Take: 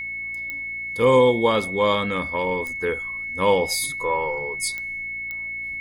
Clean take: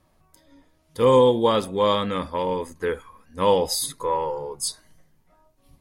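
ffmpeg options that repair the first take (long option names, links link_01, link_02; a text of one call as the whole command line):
ffmpeg -i in.wav -af "adeclick=threshold=4,bandreject=frequency=57.7:width_type=h:width=4,bandreject=frequency=115.4:width_type=h:width=4,bandreject=frequency=173.1:width_type=h:width=4,bandreject=frequency=230.8:width_type=h:width=4,bandreject=frequency=288.5:width_type=h:width=4,bandreject=frequency=346.2:width_type=h:width=4,bandreject=frequency=2200:width=30" out.wav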